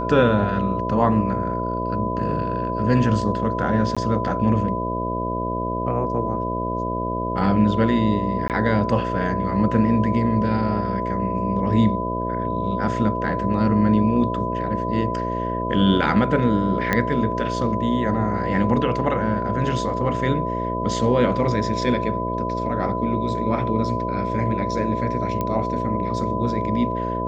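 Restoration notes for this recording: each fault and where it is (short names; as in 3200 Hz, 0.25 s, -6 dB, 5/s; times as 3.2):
buzz 60 Hz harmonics 11 -27 dBFS
tone 1000 Hz -26 dBFS
3.95–3.97 gap 16 ms
8.48–8.5 gap 18 ms
16.93 pop -7 dBFS
25.41 pop -12 dBFS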